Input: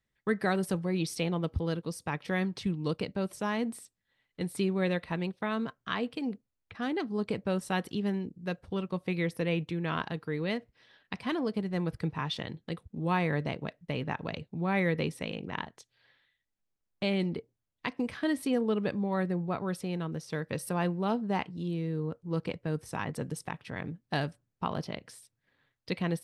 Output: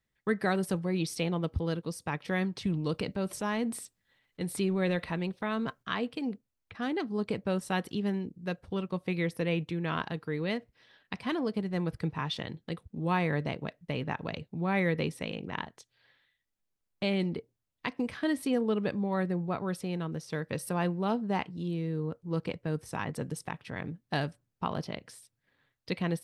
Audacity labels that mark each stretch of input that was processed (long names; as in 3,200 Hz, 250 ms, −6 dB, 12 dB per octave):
2.650000	5.830000	transient designer attack −1 dB, sustain +6 dB